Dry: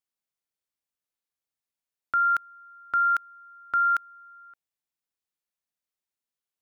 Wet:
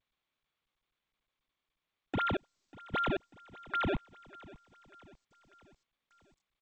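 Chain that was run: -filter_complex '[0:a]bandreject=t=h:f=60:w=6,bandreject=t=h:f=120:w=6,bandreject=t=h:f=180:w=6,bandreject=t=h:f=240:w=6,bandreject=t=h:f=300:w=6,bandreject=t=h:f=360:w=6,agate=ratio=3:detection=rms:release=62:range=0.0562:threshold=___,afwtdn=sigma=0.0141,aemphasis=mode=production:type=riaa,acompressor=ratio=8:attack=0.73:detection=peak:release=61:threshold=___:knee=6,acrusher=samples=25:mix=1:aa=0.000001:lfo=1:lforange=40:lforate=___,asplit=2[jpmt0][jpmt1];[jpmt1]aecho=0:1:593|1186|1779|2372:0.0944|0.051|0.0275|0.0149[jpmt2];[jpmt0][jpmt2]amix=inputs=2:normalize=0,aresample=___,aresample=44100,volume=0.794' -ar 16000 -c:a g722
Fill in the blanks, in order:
0.00794, 0.0447, 3.9, 8000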